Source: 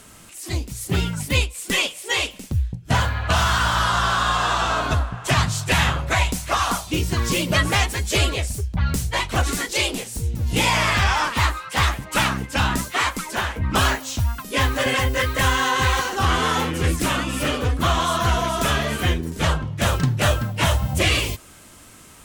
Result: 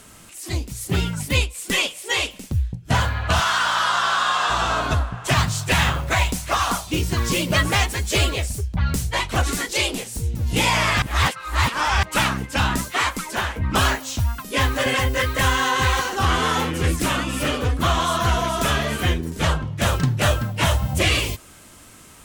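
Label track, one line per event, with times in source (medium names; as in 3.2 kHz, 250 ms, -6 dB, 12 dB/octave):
3.400000	4.500000	frequency weighting A
5.310000	8.470000	companded quantiser 6-bit
11.020000	12.030000	reverse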